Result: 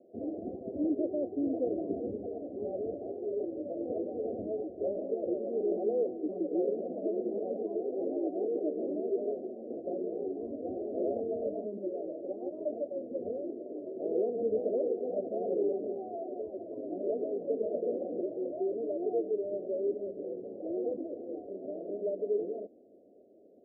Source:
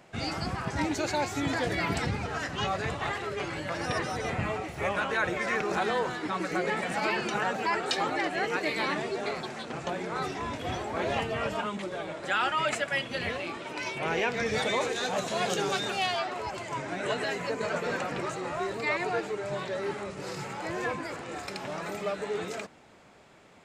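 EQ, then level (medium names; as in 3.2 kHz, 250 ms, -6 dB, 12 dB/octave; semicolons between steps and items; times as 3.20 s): high-pass 230 Hz 12 dB/octave; steep low-pass 720 Hz 72 dB/octave; static phaser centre 360 Hz, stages 4; +3.5 dB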